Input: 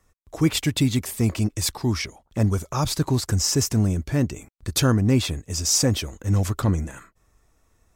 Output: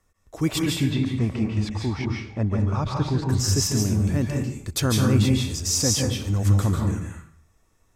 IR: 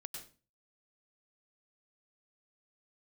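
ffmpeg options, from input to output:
-filter_complex "[0:a]asplit=3[link_01][link_02][link_03];[link_01]afade=type=out:start_time=0.61:duration=0.02[link_04];[link_02]lowpass=2900,afade=type=in:start_time=0.61:duration=0.02,afade=type=out:start_time=3.29:duration=0.02[link_05];[link_03]afade=type=in:start_time=3.29:duration=0.02[link_06];[link_04][link_05][link_06]amix=inputs=3:normalize=0[link_07];[1:a]atrim=start_sample=2205,asetrate=29106,aresample=44100[link_08];[link_07][link_08]afir=irnorm=-1:irlink=0"

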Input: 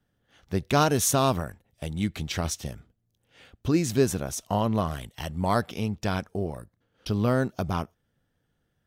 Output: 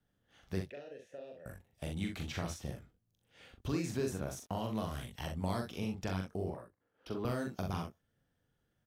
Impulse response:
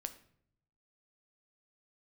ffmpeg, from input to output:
-filter_complex "[0:a]asettb=1/sr,asplit=3[link_01][link_02][link_03];[link_01]atrim=end=4.294[link_04];[link_02]atrim=start=4.29:end=4.95,asetpts=PTS-STARTPTS,afade=type=in:duration=0.004:curve=qsin,afade=type=out:start_time=0.656:duration=0.004:curve=qsin,aeval=exprs='sgn(val(0))*max(abs(val(0))-0.00251,0)':channel_layout=same[link_05];[link_03]atrim=start=4.946[link_06];[link_04][link_05]acrossfade=duration=0.004:curve1=hsin:curve2=qsin[link_07];[link_07][link_06]acrossfade=duration=0.004:curve1=qsin:curve2=hsin,asettb=1/sr,asplit=3[link_08][link_09][link_10];[link_08]atrim=end=6.504[link_11];[link_09]atrim=start=6.5:end=7.25,asetpts=PTS-STARTPTS,afade=type=in:duration=0.004:curve=qsin,afade=type=out:start_time=0.746:duration=0.004:curve=qsin,acrossover=split=260 2200:gain=0.251 1 0.224[link_12][link_13][link_14];[link_12][link_13][link_14]amix=inputs=3:normalize=0[link_15];[link_10]atrim=start=7.246[link_16];[link_11][link_15]acrossfade=duration=0.004:curve1=hsin:curve2=qsin[link_17];[link_17][link_16]acrossfade=duration=0.004:curve1=qsin:curve2=hsin,acrossover=split=450|2300[link_18][link_19][link_20];[link_18]acompressor=threshold=-30dB:ratio=4[link_21];[link_19]acompressor=threshold=-35dB:ratio=4[link_22];[link_20]acompressor=threshold=-43dB:ratio=4[link_23];[link_21][link_22][link_23]amix=inputs=3:normalize=0,asettb=1/sr,asplit=3[link_24][link_25][link_26];[link_24]atrim=end=0.694[link_27];[link_25]atrim=start=0.69:end=1.46,asetpts=PTS-STARTPTS,afade=type=in:duration=0.004:curve=qsin,afade=type=out:start_time=0.766:duration=0.004:curve=qsin,asplit=3[link_28][link_29][link_30];[link_28]bandpass=frequency=530:width_type=q:width=8,volume=0dB[link_31];[link_29]bandpass=frequency=1840:width_type=q:width=8,volume=-6dB[link_32];[link_30]bandpass=frequency=2480:width_type=q:width=8,volume=-9dB[link_33];[link_31][link_32][link_33]amix=inputs=3:normalize=0[link_34];[link_26]atrim=start=1.456[link_35];[link_27][link_34]acrossfade=duration=0.004:curve1=hsin:curve2=qsin[link_36];[link_36][link_35]acrossfade=duration=0.004:curve1=qsin:curve2=hsin,asplit=2[link_37][link_38];[link_38]aecho=0:1:42|64:0.631|0.376[link_39];[link_37][link_39]amix=inputs=2:normalize=0,volume=-6.5dB"

